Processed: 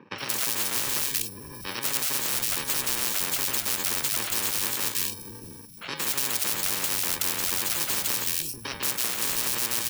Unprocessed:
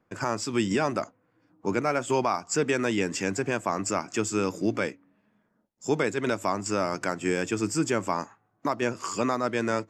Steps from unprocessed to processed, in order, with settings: bit-reversed sample order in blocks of 64 samples; three bands offset in time mids, highs, lows 180/640 ms, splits 150/2700 Hz; spectrum-flattening compressor 10:1; trim +4.5 dB

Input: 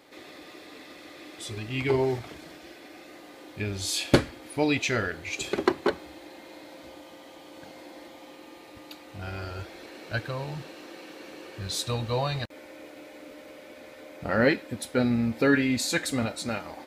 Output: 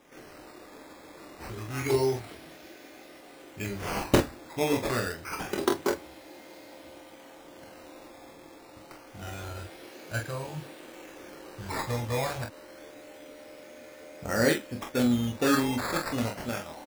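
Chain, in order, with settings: decimation with a swept rate 10×, swing 100% 0.27 Hz; early reflections 25 ms -6 dB, 45 ms -7 dB; trim -3.5 dB

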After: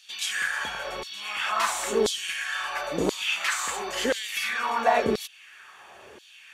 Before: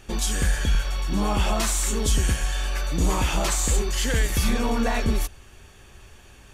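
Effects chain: tone controls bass +11 dB, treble -9 dB; in parallel at 0 dB: compression, threshold -18 dBFS, peak gain reduction 11.5 dB; on the sum: LFO high-pass saw down 0.97 Hz 380–4300 Hz; trim -2 dB

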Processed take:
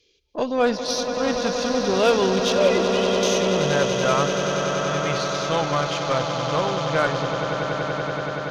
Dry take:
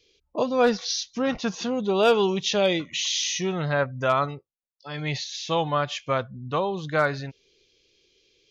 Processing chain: 2.52–3.23 s: formants replaced by sine waves; echo with a slow build-up 95 ms, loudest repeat 8, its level -10 dB; Chebyshev shaper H 8 -28 dB, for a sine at -6 dBFS

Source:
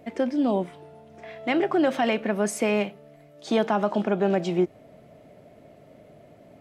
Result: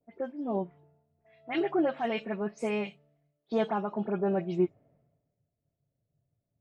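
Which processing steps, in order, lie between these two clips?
delay that grows with frequency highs late, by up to 108 ms; spectral noise reduction 8 dB; in parallel at +3 dB: compression, threshold -35 dBFS, peak gain reduction 16 dB; on the sum: tape spacing loss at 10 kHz 24 dB; three bands expanded up and down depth 100%; trim -7.5 dB

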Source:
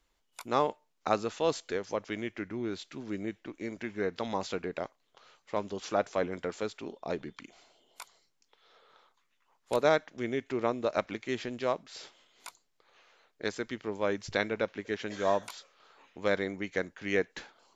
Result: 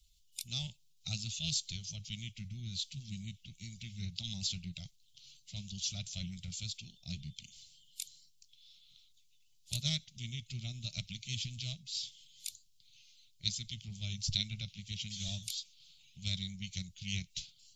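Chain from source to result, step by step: coarse spectral quantiser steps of 15 dB; inverse Chebyshev band-stop 270–1800 Hz, stop band 40 dB; loudspeaker Doppler distortion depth 0.16 ms; trim +9 dB

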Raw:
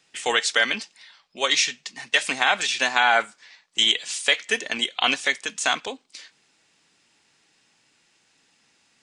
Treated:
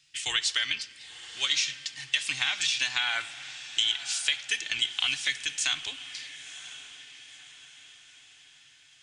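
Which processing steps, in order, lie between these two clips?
FFT filter 140 Hz 0 dB, 210 Hz -26 dB, 310 Hz -13 dB, 470 Hz -27 dB, 3 kHz -1 dB, 5 kHz -1 dB, 8.6 kHz -4 dB; compression, threshold -25 dBFS, peak gain reduction 9.5 dB; echo that smears into a reverb 999 ms, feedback 47%, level -14 dB; simulated room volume 3400 m³, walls mixed, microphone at 0.42 m; trim +2 dB

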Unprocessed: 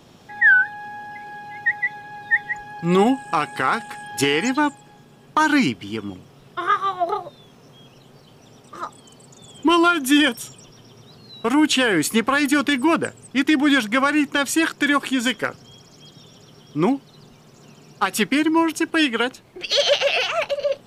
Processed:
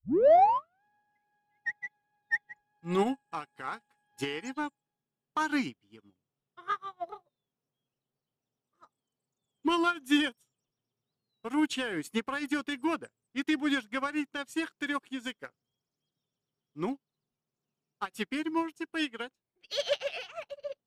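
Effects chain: tape start-up on the opening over 0.83 s; in parallel at -9 dB: saturation -18 dBFS, distortion -10 dB; on the sum: upward expansion 2.5:1, over -34 dBFS; trim -7.5 dB

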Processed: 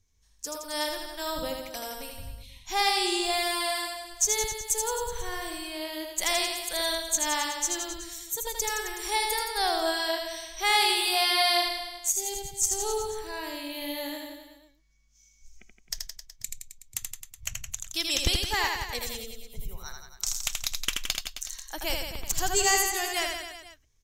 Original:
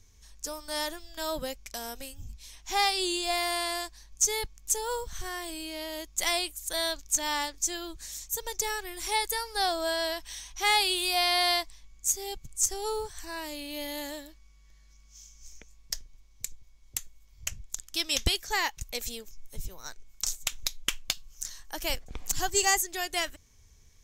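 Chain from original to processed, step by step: 3.83–4.80 s: crackle 96 per s -46 dBFS; spectral noise reduction 13 dB; reverse bouncing-ball echo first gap 80 ms, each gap 1.1×, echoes 5

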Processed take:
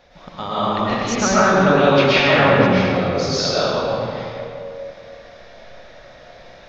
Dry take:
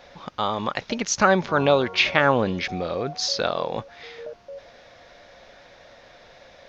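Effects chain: bass shelf 210 Hz +6.5 dB; reverberation RT60 2.3 s, pre-delay 85 ms, DRR -10.5 dB; trim -5.5 dB

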